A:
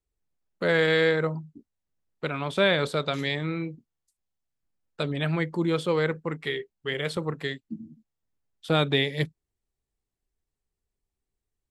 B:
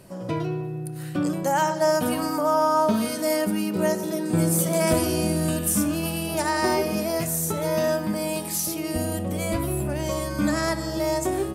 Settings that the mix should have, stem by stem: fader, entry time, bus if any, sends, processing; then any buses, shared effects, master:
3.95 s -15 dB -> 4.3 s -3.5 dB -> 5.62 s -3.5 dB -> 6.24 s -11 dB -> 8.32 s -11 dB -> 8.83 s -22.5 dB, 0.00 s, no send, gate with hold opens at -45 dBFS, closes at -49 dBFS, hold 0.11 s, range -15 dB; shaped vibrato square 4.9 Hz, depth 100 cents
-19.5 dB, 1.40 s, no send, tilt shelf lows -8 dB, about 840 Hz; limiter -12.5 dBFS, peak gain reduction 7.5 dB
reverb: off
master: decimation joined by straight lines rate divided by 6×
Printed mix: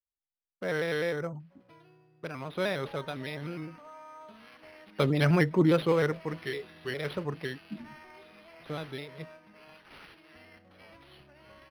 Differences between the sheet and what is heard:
stem A -15.0 dB -> -8.0 dB; stem B -19.5 dB -> -26.0 dB

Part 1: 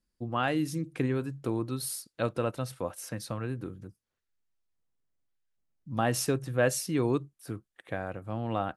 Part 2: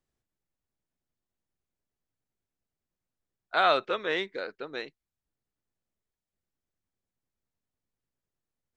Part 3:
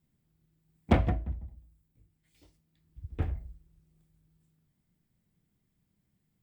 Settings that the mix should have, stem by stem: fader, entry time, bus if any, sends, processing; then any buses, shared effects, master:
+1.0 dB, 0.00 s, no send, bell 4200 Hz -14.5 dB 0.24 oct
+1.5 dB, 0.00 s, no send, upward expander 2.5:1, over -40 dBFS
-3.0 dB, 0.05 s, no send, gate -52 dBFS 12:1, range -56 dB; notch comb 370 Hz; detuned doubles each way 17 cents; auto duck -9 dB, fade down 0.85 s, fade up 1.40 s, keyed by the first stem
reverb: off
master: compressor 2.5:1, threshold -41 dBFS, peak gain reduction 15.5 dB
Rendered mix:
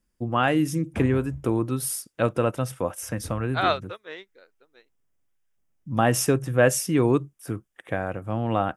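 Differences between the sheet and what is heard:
stem 1 +1.0 dB -> +7.0 dB; stem 3 -3.0 dB -> +5.0 dB; master: missing compressor 2.5:1, threshold -41 dBFS, peak gain reduction 15.5 dB

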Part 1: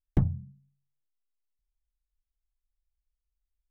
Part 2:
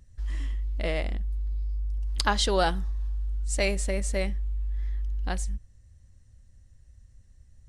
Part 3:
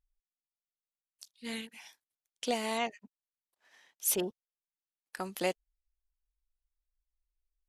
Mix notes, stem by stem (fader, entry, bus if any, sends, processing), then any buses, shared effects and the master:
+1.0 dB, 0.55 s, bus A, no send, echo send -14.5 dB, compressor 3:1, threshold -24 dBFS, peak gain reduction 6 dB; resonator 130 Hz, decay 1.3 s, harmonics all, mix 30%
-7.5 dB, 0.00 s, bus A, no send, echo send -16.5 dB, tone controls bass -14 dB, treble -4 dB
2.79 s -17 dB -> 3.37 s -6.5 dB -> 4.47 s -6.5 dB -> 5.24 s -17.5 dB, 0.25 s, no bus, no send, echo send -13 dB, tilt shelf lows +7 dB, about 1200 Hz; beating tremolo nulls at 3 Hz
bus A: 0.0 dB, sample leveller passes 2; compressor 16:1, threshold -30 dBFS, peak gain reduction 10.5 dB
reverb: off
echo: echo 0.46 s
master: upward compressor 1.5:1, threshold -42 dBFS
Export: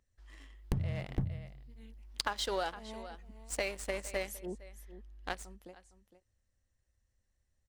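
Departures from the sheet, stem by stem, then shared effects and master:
stem 1 +1.0 dB -> +12.0 dB; master: missing upward compressor 1.5:1, threshold -42 dBFS

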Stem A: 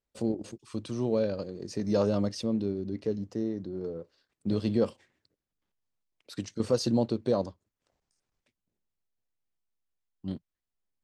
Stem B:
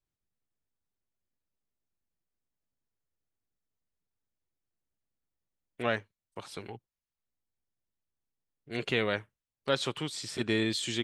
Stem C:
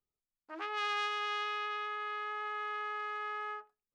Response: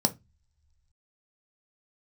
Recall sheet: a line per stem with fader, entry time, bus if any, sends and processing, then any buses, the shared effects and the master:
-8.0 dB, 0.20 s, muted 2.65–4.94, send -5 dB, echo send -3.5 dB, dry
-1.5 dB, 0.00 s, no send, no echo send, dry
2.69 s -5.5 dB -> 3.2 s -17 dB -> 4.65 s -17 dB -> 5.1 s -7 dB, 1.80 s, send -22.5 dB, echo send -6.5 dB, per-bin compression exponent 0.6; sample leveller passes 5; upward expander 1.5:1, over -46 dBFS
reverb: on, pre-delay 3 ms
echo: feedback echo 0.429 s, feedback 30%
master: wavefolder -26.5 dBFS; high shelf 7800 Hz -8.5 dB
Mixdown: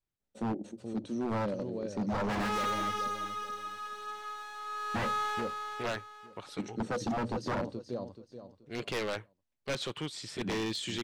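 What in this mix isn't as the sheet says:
stem C: missing upward expander 1.5:1, over -46 dBFS; reverb return -8.0 dB

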